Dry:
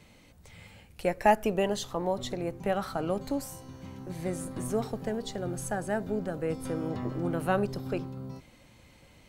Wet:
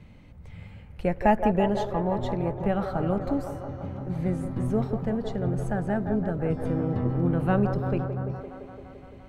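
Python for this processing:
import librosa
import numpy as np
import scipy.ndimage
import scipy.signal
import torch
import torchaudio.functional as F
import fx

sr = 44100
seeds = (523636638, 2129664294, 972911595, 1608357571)

p1 = fx.bass_treble(x, sr, bass_db=11, treble_db=-14)
y = p1 + fx.echo_wet_bandpass(p1, sr, ms=171, feedback_pct=75, hz=790.0, wet_db=-6.0, dry=0)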